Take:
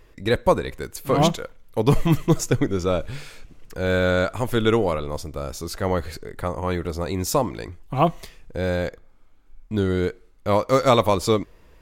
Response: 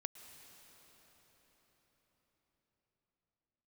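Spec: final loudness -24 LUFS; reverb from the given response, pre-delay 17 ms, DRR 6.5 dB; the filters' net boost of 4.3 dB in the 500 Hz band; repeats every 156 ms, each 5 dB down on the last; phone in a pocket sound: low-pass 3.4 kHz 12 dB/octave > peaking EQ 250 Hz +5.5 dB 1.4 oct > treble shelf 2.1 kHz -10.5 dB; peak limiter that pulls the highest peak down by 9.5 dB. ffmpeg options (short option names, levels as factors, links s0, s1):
-filter_complex "[0:a]equalizer=f=500:t=o:g=3.5,alimiter=limit=0.282:level=0:latency=1,aecho=1:1:156|312|468|624|780|936|1092:0.562|0.315|0.176|0.0988|0.0553|0.031|0.0173,asplit=2[s0][s1];[1:a]atrim=start_sample=2205,adelay=17[s2];[s1][s2]afir=irnorm=-1:irlink=0,volume=0.668[s3];[s0][s3]amix=inputs=2:normalize=0,lowpass=3400,equalizer=f=250:t=o:w=1.4:g=5.5,highshelf=f=2100:g=-10.5,volume=0.631"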